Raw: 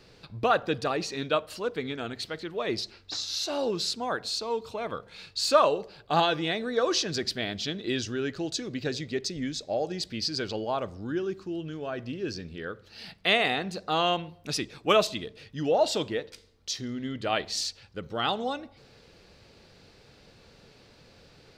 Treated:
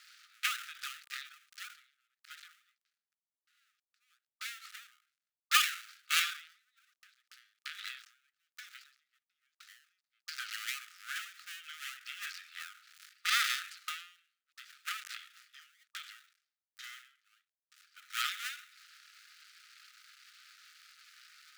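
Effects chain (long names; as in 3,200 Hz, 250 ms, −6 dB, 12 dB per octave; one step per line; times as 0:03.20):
gap after every zero crossing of 0.24 ms
linear-phase brick-wall high-pass 1,200 Hz
every ending faded ahead of time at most 110 dB per second
level +4.5 dB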